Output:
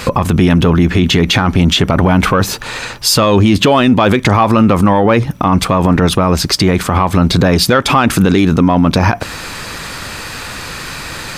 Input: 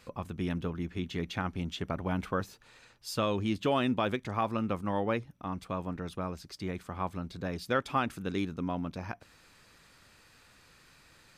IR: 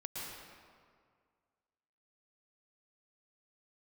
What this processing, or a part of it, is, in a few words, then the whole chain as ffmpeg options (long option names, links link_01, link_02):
mastering chain: -af "equalizer=frequency=970:width_type=o:width=0.77:gain=2,acompressor=threshold=-34dB:ratio=2,asoftclip=type=tanh:threshold=-23dB,alimiter=level_in=35dB:limit=-1dB:release=50:level=0:latency=1,volume=-1dB"